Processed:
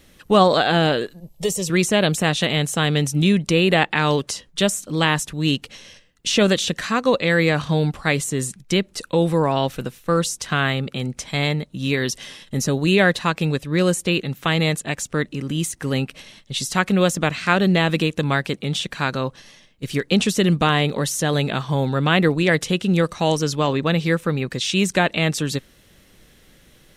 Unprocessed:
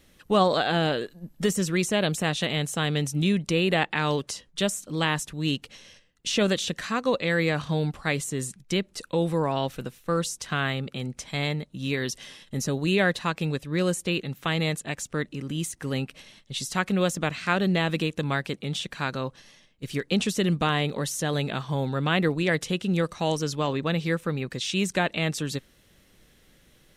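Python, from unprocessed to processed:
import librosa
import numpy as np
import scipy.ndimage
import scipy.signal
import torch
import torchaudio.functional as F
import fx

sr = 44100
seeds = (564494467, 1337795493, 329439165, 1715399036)

y = fx.fixed_phaser(x, sr, hz=620.0, stages=4, at=(1.2, 1.7))
y = F.gain(torch.from_numpy(y), 6.5).numpy()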